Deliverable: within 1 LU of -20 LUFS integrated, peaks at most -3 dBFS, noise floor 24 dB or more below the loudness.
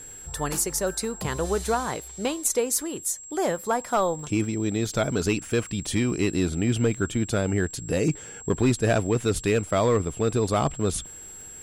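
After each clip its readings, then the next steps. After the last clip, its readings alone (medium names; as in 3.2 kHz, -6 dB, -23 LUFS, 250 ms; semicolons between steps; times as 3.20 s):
tick rate 31 per s; steady tone 7.6 kHz; tone level -40 dBFS; loudness -25.5 LUFS; peak level -12.5 dBFS; loudness target -20.0 LUFS
-> de-click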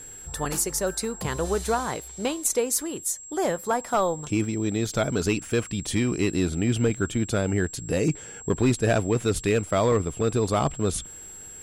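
tick rate 0.17 per s; steady tone 7.6 kHz; tone level -40 dBFS
-> band-stop 7.6 kHz, Q 30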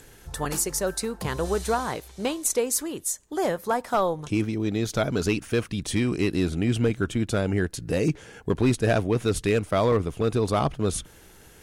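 steady tone not found; loudness -26.0 LUFS; peak level -11.0 dBFS; loudness target -20.0 LUFS
-> trim +6 dB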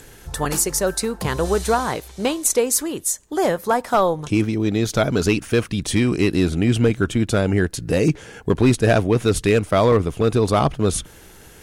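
loudness -20.0 LUFS; peak level -5.0 dBFS; noise floor -45 dBFS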